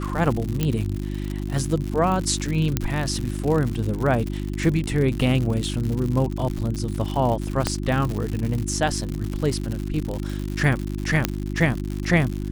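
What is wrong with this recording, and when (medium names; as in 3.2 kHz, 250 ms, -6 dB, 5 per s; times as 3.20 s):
crackle 120 per s -26 dBFS
hum 50 Hz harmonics 7 -28 dBFS
0.63 s: pop -9 dBFS
2.77 s: pop -6 dBFS
7.67 s: pop -6 dBFS
11.25 s: pop -3 dBFS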